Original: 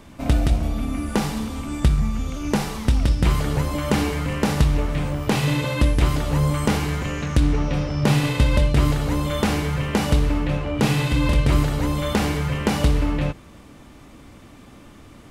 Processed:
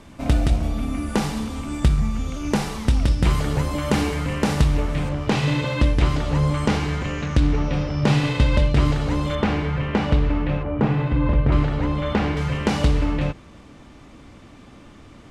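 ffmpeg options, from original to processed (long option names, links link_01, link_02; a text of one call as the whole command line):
ffmpeg -i in.wav -af "asetnsamples=nb_out_samples=441:pad=0,asendcmd='5.09 lowpass f 6000;9.35 lowpass f 3000;10.63 lowpass f 1500;11.52 lowpass f 2900;12.37 lowpass f 7200',lowpass=11000" out.wav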